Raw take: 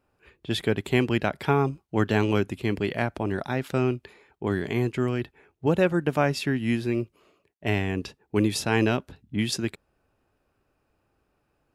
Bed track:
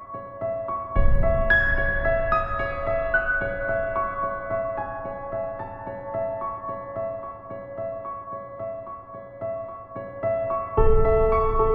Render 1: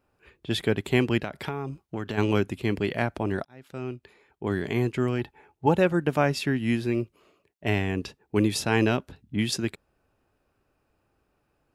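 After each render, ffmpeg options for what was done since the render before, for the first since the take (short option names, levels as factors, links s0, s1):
-filter_complex "[0:a]asplit=3[s0][s1][s2];[s0]afade=t=out:st=1.19:d=0.02[s3];[s1]acompressor=threshold=0.0447:ratio=5:attack=3.2:release=140:knee=1:detection=peak,afade=t=in:st=1.19:d=0.02,afade=t=out:st=2.17:d=0.02[s4];[s2]afade=t=in:st=2.17:d=0.02[s5];[s3][s4][s5]amix=inputs=3:normalize=0,asettb=1/sr,asplit=3[s6][s7][s8];[s6]atrim=end=5.184[s9];[s7]atrim=start=5.18:end=5.75,asetpts=PTS-STARTPTS,afade=t=in:d=0.004:c=qsin,afade=t=out:st=0.566:d=0.004:c=qsin,equalizer=f=850:t=o:w=0.22:g=13[s10];[s8]atrim=start=5.746[s11];[s9][s10]acrossfade=d=0.004:c1=hsin:c2=qsin[s12];[s12][s11]acrossfade=d=0.004:c1=qsin:c2=hsin,asplit=2[s13][s14];[s13]atrim=end=3.45,asetpts=PTS-STARTPTS,afade=t=out:st=3.446:d=0.004:c=hsin[s15];[s14]atrim=start=3.45,asetpts=PTS-STARTPTS,afade=t=in:d=1.23[s16];[s15][s16]concat=n=2:v=0:a=1"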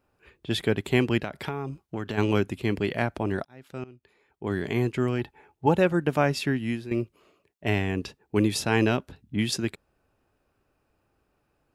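-filter_complex "[0:a]asplit=3[s0][s1][s2];[s0]atrim=end=3.84,asetpts=PTS-STARTPTS,afade=t=out:st=3.836:d=0.004:c=hsin:silence=0.125893[s3];[s1]atrim=start=3.84:end=6.91,asetpts=PTS-STARTPTS,afade=t=in:d=0.79:silence=0.125893,afade=t=out:st=2.67:d=0.4:silence=0.251189[s4];[s2]atrim=start=6.91,asetpts=PTS-STARTPTS,afade=t=in:d=0.004:c=hsin:silence=0.251189[s5];[s3][s4][s5]concat=n=3:v=0:a=1"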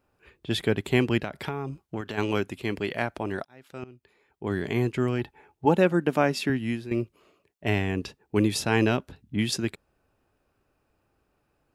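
-filter_complex "[0:a]asettb=1/sr,asplit=3[s0][s1][s2];[s0]atrim=end=2.014[s3];[s1]atrim=start=2.01:end=3.83,asetpts=PTS-STARTPTS,afade=t=in:d=0.004:c=qsin,afade=t=out:st=1.816:d=0.004:c=qsin,lowshelf=f=290:g=-7[s4];[s2]atrim=start=3.826[s5];[s3][s4]acrossfade=d=0.004:c1=hsin:c2=qsin[s6];[s6][s5]acrossfade=d=0.004:c1=qsin:c2=hsin,asettb=1/sr,asplit=3[s7][s8][s9];[s7]atrim=end=5.654[s10];[s8]atrim=start=5.65:end=6.5,asetpts=PTS-STARTPTS,afade=t=in:d=0.004:c=qsin,afade=t=out:st=0.846:d=0.004:c=qsin,lowshelf=f=140:t=q:w=1.5:g=-10[s11];[s9]atrim=start=6.496[s12];[s10][s11]acrossfade=d=0.004:c1=hsin:c2=qsin[s13];[s13][s12]acrossfade=d=0.004:c1=qsin:c2=hsin"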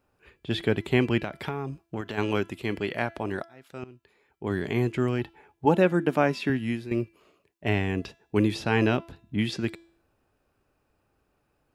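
-filter_complex "[0:a]acrossover=split=4200[s0][s1];[s1]acompressor=threshold=0.00398:ratio=4:attack=1:release=60[s2];[s0][s2]amix=inputs=2:normalize=0,bandreject=f=335.5:t=h:w=4,bandreject=f=671:t=h:w=4,bandreject=f=1006.5:t=h:w=4,bandreject=f=1342:t=h:w=4,bandreject=f=1677.5:t=h:w=4,bandreject=f=2013:t=h:w=4,bandreject=f=2348.5:t=h:w=4,bandreject=f=2684:t=h:w=4,bandreject=f=3019.5:t=h:w=4,bandreject=f=3355:t=h:w=4,bandreject=f=3690.5:t=h:w=4,bandreject=f=4026:t=h:w=4,bandreject=f=4361.5:t=h:w=4,bandreject=f=4697:t=h:w=4,bandreject=f=5032.5:t=h:w=4,bandreject=f=5368:t=h:w=4,bandreject=f=5703.5:t=h:w=4,bandreject=f=6039:t=h:w=4,bandreject=f=6374.5:t=h:w=4,bandreject=f=6710:t=h:w=4,bandreject=f=7045.5:t=h:w=4,bandreject=f=7381:t=h:w=4,bandreject=f=7716.5:t=h:w=4,bandreject=f=8052:t=h:w=4,bandreject=f=8387.5:t=h:w=4,bandreject=f=8723:t=h:w=4,bandreject=f=9058.5:t=h:w=4"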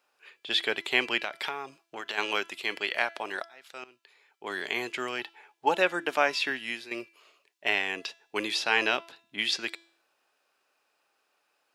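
-af "highpass=630,equalizer=f=4300:t=o:w=2.3:g=8.5"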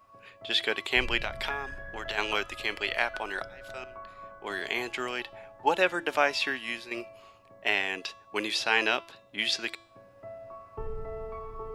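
-filter_complex "[1:a]volume=0.112[s0];[0:a][s0]amix=inputs=2:normalize=0"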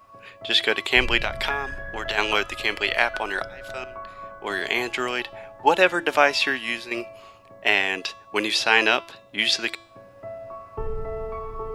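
-af "volume=2.24"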